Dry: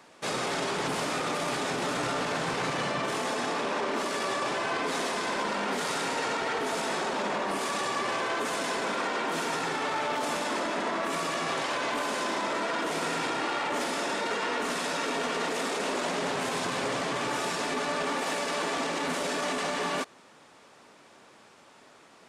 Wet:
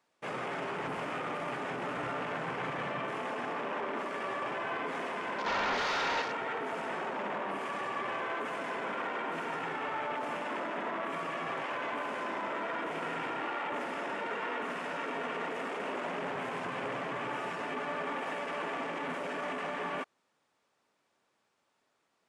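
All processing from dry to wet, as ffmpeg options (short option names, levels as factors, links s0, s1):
-filter_complex "[0:a]asettb=1/sr,asplit=3[s0][s1][s2];[s0]atrim=end=5.464[s3];[s1]atrim=start=5.46:end=6.22,asetpts=PTS-STARTPTS,afade=t=in:d=0.004:c=qsin,afade=t=out:st=0.756:d=0.004:c=qsin,asplit=2[s4][s5];[s5]highpass=f=720:p=1,volume=8.91,asoftclip=type=tanh:threshold=0.119[s6];[s4][s6]amix=inputs=2:normalize=0,lowpass=f=6100:p=1,volume=0.501,highshelf=f=6500:g=-9[s7];[s2]atrim=start=6.216[s8];[s3][s7]acrossfade=d=0.004:c1=hsin:c2=qsin[s9];[s9][s8]acrossfade=d=0.004:c1=qsin:c2=hsin,afwtdn=0.0158,equalizer=f=260:w=0.62:g=-2.5,volume=0.596"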